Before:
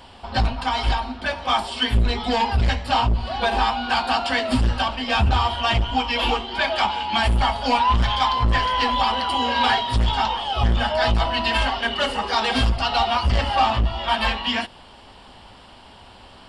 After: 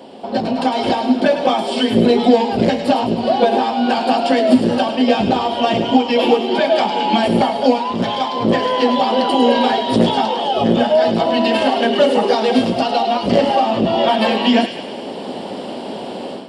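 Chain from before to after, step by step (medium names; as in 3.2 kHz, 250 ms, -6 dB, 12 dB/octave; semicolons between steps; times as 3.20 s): high-pass 190 Hz 24 dB/octave; compression 5:1, threshold -27 dBFS, peak gain reduction 12 dB; resonant low shelf 780 Hz +12.5 dB, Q 1.5; on a send: feedback echo behind a high-pass 105 ms, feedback 59%, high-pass 2 kHz, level -7.5 dB; on the sum: level rider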